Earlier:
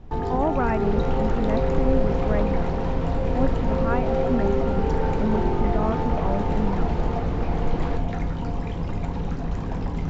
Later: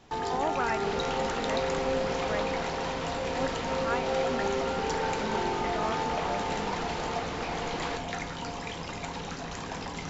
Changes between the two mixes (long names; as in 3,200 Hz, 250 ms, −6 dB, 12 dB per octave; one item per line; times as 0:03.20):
speech −4.0 dB
master: add spectral tilt +4.5 dB per octave